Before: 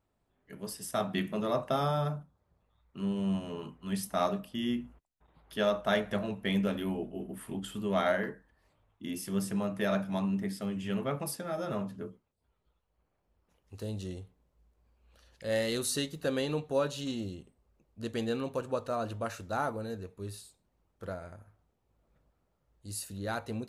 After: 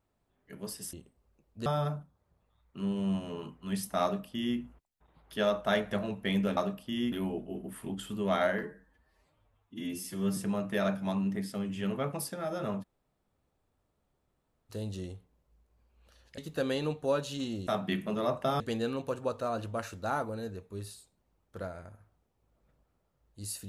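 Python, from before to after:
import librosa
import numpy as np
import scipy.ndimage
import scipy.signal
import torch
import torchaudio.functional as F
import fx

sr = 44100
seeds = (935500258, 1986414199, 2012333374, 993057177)

y = fx.edit(x, sr, fx.swap(start_s=0.93, length_s=0.93, other_s=17.34, other_length_s=0.73),
    fx.duplicate(start_s=4.23, length_s=0.55, to_s=6.77),
    fx.stretch_span(start_s=8.28, length_s=1.16, factor=1.5),
    fx.room_tone_fill(start_s=11.9, length_s=1.87, crossfade_s=0.02),
    fx.cut(start_s=15.45, length_s=0.6), tone=tone)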